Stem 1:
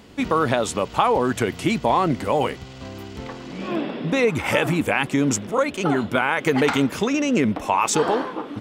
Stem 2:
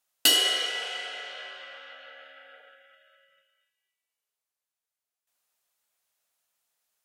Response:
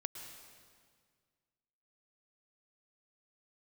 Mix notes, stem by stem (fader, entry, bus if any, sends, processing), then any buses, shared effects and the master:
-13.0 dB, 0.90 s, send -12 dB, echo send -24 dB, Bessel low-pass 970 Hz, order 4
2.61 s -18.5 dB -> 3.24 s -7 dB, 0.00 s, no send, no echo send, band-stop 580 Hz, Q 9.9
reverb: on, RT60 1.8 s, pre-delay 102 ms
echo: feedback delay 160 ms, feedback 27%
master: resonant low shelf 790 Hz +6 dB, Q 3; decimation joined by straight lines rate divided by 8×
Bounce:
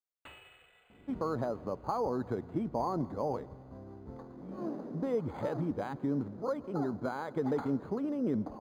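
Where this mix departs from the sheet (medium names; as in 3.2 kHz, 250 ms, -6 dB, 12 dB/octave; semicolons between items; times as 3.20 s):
stem 2 -18.5 dB -> -29.5 dB; master: missing resonant low shelf 790 Hz +6 dB, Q 3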